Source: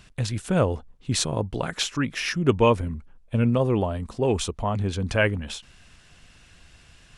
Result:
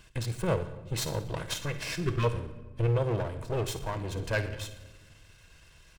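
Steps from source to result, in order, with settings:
lower of the sound and its delayed copy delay 1.9 ms
in parallel at −1.5 dB: downward compressor, threshold −33 dBFS, peak gain reduction 17.5 dB
on the sum: healed spectral selection 0:02.40–0:02.67, 430–1,000 Hz before
on a send: delay with a high-pass on its return 73 ms, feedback 53%, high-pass 1,500 Hz, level −13 dB
on the sum: rectangular room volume 1,400 cubic metres, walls mixed, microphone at 0.63 metres
tempo change 1.2×
level −8.5 dB

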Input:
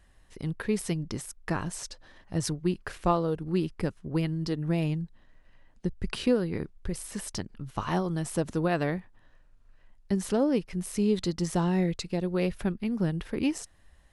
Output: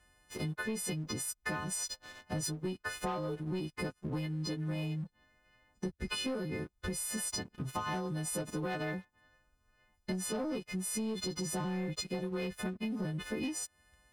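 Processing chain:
every partial snapped to a pitch grid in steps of 3 semitones
high-pass filter 49 Hz 12 dB per octave
high-shelf EQ 3,900 Hz −8 dB
leveller curve on the samples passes 2
downward compressor 10 to 1, threshold −34 dBFS, peak gain reduction 17 dB

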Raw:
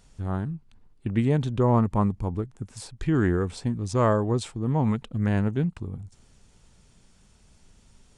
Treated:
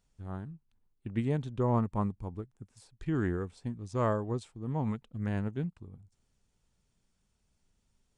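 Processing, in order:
expander for the loud parts 1.5 to 1, over −41 dBFS
level −6.5 dB

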